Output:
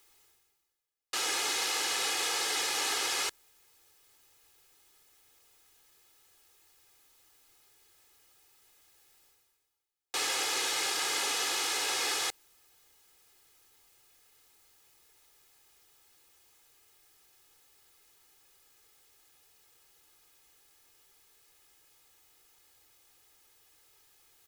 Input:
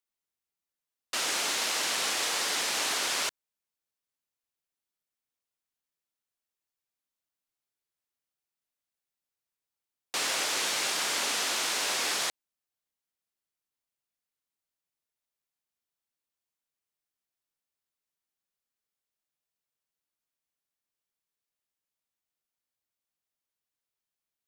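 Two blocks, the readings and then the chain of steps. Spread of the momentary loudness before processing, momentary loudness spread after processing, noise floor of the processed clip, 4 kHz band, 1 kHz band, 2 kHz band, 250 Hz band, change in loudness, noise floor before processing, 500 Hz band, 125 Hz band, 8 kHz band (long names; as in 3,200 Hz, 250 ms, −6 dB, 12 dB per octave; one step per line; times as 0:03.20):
4 LU, 4 LU, −74 dBFS, −1.5 dB, −1.0 dB, −2.0 dB, −2.5 dB, −1.5 dB, below −85 dBFS, −2.0 dB, can't be measured, −1.5 dB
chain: comb filter 2.4 ms, depth 72%
reversed playback
upward compression, threshold −38 dBFS
reversed playback
level −3.5 dB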